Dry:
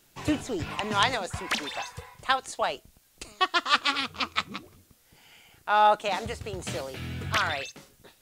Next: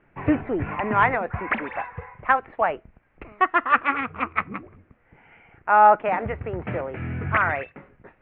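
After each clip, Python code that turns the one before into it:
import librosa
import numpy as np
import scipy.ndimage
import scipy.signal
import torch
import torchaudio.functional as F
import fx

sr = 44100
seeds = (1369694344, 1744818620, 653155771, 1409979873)

y = scipy.signal.sosfilt(scipy.signal.butter(8, 2300.0, 'lowpass', fs=sr, output='sos'), x)
y = F.gain(torch.from_numpy(y), 6.0).numpy()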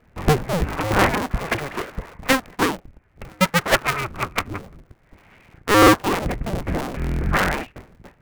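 y = fx.cycle_switch(x, sr, every=2, mode='inverted')
y = fx.low_shelf(y, sr, hz=270.0, db=8.5)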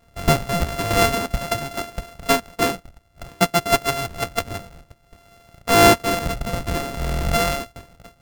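y = np.r_[np.sort(x[:len(x) // 64 * 64].reshape(-1, 64), axis=1).ravel(), x[len(x) // 64 * 64:]]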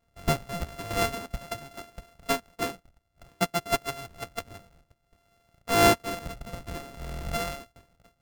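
y = fx.upward_expand(x, sr, threshold_db=-27.0, expansion=1.5)
y = F.gain(torch.from_numpy(y), -6.5).numpy()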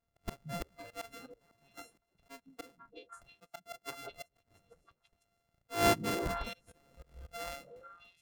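y = fx.echo_stepped(x, sr, ms=167, hz=170.0, octaves=1.4, feedback_pct=70, wet_db=-8)
y = fx.auto_swell(y, sr, attack_ms=470.0)
y = fx.noise_reduce_blind(y, sr, reduce_db=13)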